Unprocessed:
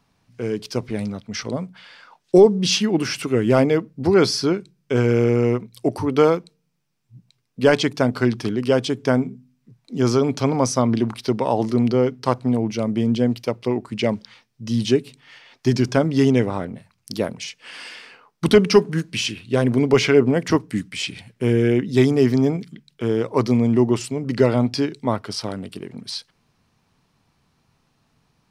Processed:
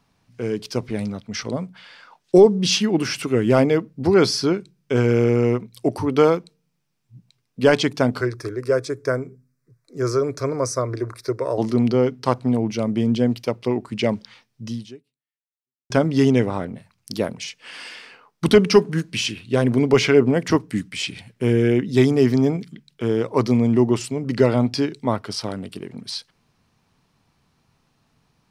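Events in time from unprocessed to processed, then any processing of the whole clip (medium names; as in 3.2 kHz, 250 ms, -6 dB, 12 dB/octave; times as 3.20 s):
8.21–11.58 s: static phaser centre 820 Hz, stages 6
14.65–15.90 s: fade out exponential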